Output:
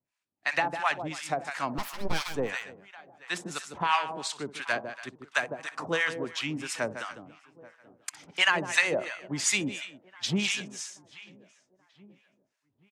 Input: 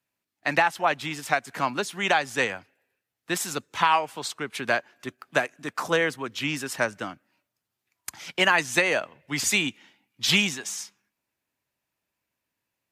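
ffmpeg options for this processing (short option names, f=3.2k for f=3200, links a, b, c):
-filter_complex "[0:a]lowpass=f=9.7k:w=0.5412,lowpass=f=9.7k:w=1.3066,asplit=2[a][b];[b]adelay=830,lowpass=f=1.9k:p=1,volume=-21dB,asplit=2[c][d];[d]adelay=830,lowpass=f=1.9k:p=1,volume=0.51,asplit=2[e][f];[f]adelay=830,lowpass=f=1.9k:p=1,volume=0.51,asplit=2[g][h];[h]adelay=830,lowpass=f=1.9k:p=1,volume=0.51[i];[c][e][g][i]amix=inputs=4:normalize=0[j];[a][j]amix=inputs=2:normalize=0,asettb=1/sr,asplit=3[k][l][m];[k]atrim=end=1.784[n];[l]atrim=start=1.78:end=2.34,asetpts=PTS-STARTPTS,afade=t=in:d=0.004:c=qsin,afade=t=out:st=0.556:d=0.004:c=qsin,aeval=exprs='abs(val(0))':c=same[o];[m]atrim=start=2.336[p];[n][o]acrossfade=d=0.004:c1=hsin:c2=qsin[q];[q][p]acrossfade=d=0.004:c1=qsin:c2=hsin,asplit=2[r][s];[s]aecho=0:1:63|153|283:0.133|0.335|0.119[t];[r][t]amix=inputs=2:normalize=0,acrossover=split=830[u][v];[u]aeval=exprs='val(0)*(1-1/2+1/2*cos(2*PI*2.9*n/s))':c=same[w];[v]aeval=exprs='val(0)*(1-1/2-1/2*cos(2*PI*2.9*n/s))':c=same[x];[w][x]amix=inputs=2:normalize=0"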